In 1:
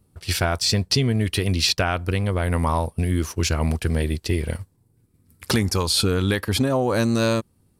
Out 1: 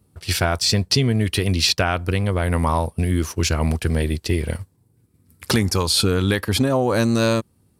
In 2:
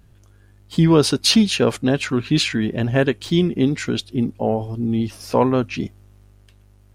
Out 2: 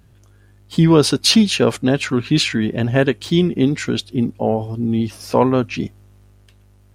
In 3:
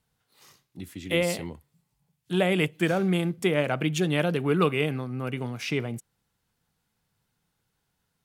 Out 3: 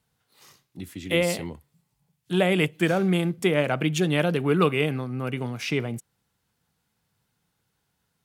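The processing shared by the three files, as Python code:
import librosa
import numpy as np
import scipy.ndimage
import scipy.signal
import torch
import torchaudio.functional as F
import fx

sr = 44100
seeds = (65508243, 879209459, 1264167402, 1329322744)

y = scipy.signal.sosfilt(scipy.signal.butter(2, 50.0, 'highpass', fs=sr, output='sos'), x)
y = y * librosa.db_to_amplitude(2.0)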